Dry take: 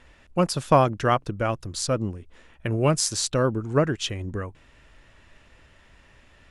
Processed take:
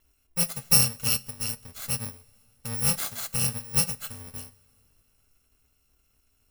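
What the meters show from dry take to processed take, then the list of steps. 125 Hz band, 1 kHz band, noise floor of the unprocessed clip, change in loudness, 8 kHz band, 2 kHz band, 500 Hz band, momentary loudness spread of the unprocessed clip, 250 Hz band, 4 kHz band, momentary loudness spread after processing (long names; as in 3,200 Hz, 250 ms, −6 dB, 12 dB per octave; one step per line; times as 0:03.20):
−7.5 dB, −16.0 dB, −56 dBFS, −0.5 dB, +4.5 dB, −4.0 dB, −19.0 dB, 13 LU, −11.0 dB, +1.5 dB, 19 LU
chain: samples in bit-reversed order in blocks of 128 samples
coupled-rooms reverb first 0.42 s, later 3.3 s, from −16 dB, DRR 10 dB
expander for the loud parts 1.5 to 1, over −39 dBFS
level −1.5 dB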